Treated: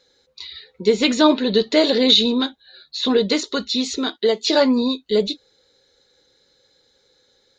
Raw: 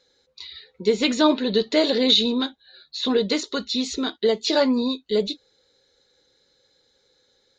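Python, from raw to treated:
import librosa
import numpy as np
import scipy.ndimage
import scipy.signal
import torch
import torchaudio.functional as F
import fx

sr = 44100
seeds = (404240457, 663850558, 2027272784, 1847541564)

y = fx.highpass(x, sr, hz=fx.line((3.73, 99.0), (4.48, 380.0)), slope=6, at=(3.73, 4.48), fade=0.02)
y = y * librosa.db_to_amplitude(3.5)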